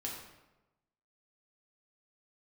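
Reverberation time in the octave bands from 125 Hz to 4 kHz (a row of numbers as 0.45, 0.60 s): 1.2, 1.1, 1.1, 1.0, 0.85, 0.70 s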